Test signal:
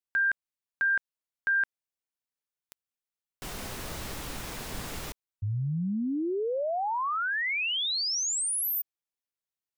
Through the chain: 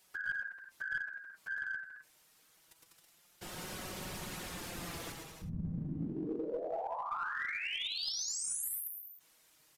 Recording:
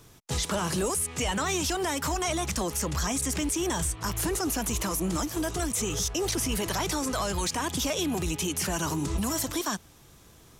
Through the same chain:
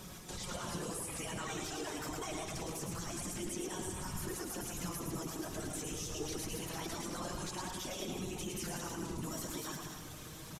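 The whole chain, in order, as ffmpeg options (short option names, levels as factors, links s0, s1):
-filter_complex "[0:a]highpass=42,acompressor=threshold=0.00631:ratio=6:attack=0.22:release=42:detection=rms,asplit=2[s0][s1];[s1]aecho=0:1:110|198|268.4|324.7|369.8:0.631|0.398|0.251|0.158|0.1[s2];[s0][s2]amix=inputs=2:normalize=0,afftfilt=real='hypot(re,im)*cos(2*PI*random(0))':imag='hypot(re,im)*sin(2*PI*random(1))':win_size=512:overlap=0.75,flanger=delay=5.4:depth=1.1:regen=47:speed=0.25:shape=sinusoidal,asplit=2[s3][s4];[s4]aeval=exprs='clip(val(0),-1,0.00355)':c=same,volume=0.631[s5];[s3][s5]amix=inputs=2:normalize=0,acompressor=mode=upward:threshold=0.00224:ratio=2.5:attack=0.11:release=32:knee=2.83:detection=peak,aresample=32000,aresample=44100,volume=3.16"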